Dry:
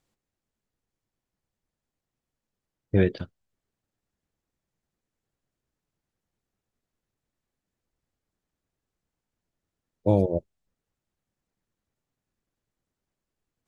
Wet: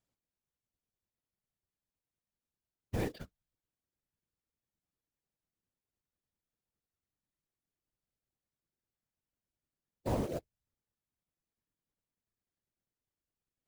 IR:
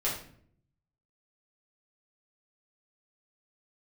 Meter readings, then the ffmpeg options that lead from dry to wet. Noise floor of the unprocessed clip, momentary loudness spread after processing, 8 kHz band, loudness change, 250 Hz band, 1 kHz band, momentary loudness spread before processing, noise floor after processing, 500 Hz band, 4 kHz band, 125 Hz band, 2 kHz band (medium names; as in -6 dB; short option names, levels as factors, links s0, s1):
under -85 dBFS, 14 LU, no reading, -13.0 dB, -13.0 dB, -5.5 dB, 15 LU, under -85 dBFS, -13.5 dB, -4.5 dB, -13.0 dB, -10.5 dB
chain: -af "asoftclip=type=hard:threshold=0.15,acrusher=bits=3:mode=log:mix=0:aa=0.000001,afftfilt=real='hypot(re,im)*cos(2*PI*random(0))':imag='hypot(re,im)*sin(2*PI*random(1))':win_size=512:overlap=0.75,volume=0.596"